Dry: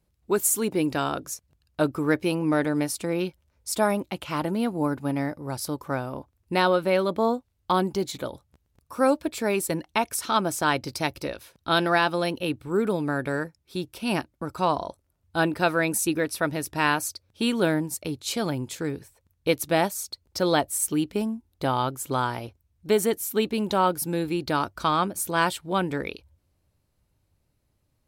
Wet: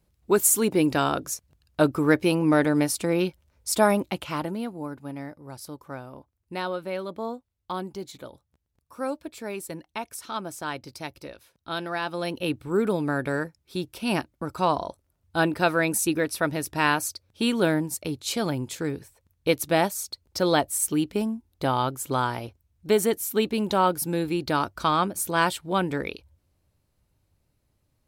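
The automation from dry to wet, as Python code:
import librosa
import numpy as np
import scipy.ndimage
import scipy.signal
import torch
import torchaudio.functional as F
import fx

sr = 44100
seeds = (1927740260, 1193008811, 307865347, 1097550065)

y = fx.gain(x, sr, db=fx.line((4.1, 3.0), (4.82, -9.0), (11.94, -9.0), (12.47, 0.5)))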